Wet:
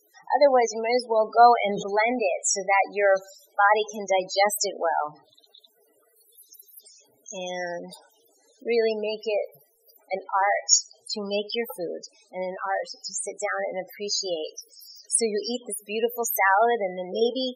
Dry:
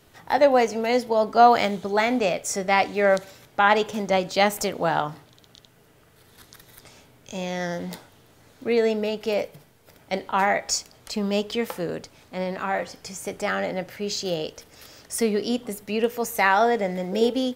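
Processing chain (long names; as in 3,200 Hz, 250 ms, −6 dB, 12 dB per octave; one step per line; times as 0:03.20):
bass and treble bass −14 dB, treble +13 dB
spectral peaks only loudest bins 16
0:01.64–0:02.23: level that may fall only so fast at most 46 dB per second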